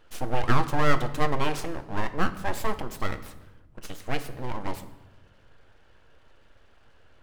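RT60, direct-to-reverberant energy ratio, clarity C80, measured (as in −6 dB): 1.1 s, 9.0 dB, 15.5 dB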